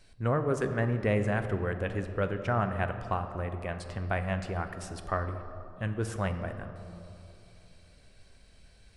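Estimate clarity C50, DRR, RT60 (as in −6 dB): 9.0 dB, 7.5 dB, 2.9 s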